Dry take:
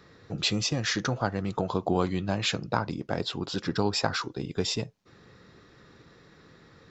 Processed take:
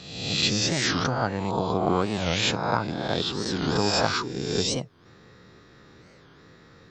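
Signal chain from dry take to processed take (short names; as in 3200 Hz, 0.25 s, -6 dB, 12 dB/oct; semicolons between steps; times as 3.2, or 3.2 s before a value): spectral swells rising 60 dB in 1.00 s; record warp 45 rpm, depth 250 cents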